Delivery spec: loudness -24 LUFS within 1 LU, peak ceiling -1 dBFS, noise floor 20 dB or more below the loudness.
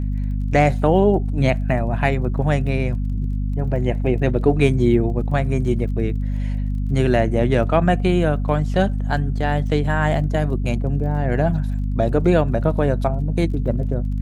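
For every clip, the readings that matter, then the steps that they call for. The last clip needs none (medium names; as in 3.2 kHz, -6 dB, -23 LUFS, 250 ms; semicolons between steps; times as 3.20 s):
tick rate 23 per s; hum 50 Hz; highest harmonic 250 Hz; hum level -19 dBFS; loudness -20.0 LUFS; peak level -2.0 dBFS; loudness target -24.0 LUFS
-> de-click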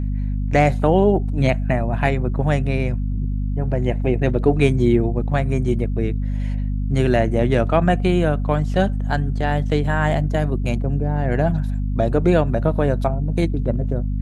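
tick rate 0 per s; hum 50 Hz; highest harmonic 250 Hz; hum level -19 dBFS
-> de-hum 50 Hz, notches 5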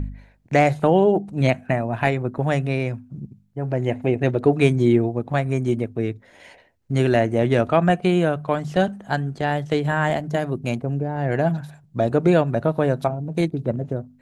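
hum not found; loudness -21.5 LUFS; peak level -3.5 dBFS; loudness target -24.0 LUFS
-> trim -2.5 dB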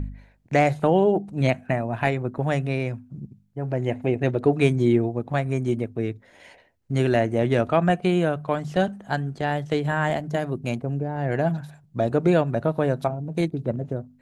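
loudness -24.0 LUFS; peak level -6.0 dBFS; noise floor -58 dBFS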